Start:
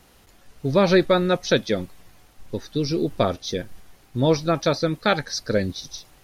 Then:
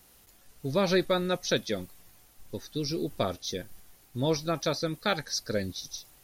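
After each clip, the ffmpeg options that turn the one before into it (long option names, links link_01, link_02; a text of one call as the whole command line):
ffmpeg -i in.wav -af "aemphasis=mode=production:type=50kf,volume=-8.5dB" out.wav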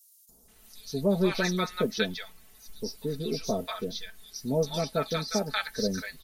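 ffmpeg -i in.wav -filter_complex "[0:a]aecho=1:1:4.6:0.73,acrossover=split=890|5100[link_01][link_02][link_03];[link_01]adelay=290[link_04];[link_02]adelay=480[link_05];[link_04][link_05][link_03]amix=inputs=3:normalize=0" out.wav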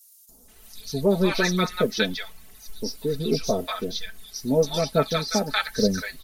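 ffmpeg -i in.wav -af "aphaser=in_gain=1:out_gain=1:delay=4.1:decay=0.37:speed=1.2:type=triangular,volume=5dB" out.wav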